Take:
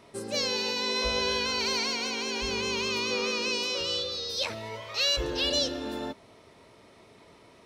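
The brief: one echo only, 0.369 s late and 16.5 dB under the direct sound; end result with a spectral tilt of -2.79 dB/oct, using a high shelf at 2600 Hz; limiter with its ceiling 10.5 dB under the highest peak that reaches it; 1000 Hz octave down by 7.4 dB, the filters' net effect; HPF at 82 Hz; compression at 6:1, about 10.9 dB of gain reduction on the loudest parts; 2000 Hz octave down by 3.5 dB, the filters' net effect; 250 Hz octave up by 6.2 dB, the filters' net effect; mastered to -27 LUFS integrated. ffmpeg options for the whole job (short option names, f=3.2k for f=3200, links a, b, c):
-af "highpass=82,equalizer=f=250:t=o:g=8,equalizer=f=1k:t=o:g=-8,equalizer=f=2k:t=o:g=-5.5,highshelf=f=2.6k:g=3.5,acompressor=threshold=-34dB:ratio=6,alimiter=level_in=9.5dB:limit=-24dB:level=0:latency=1,volume=-9.5dB,aecho=1:1:369:0.15,volume=14dB"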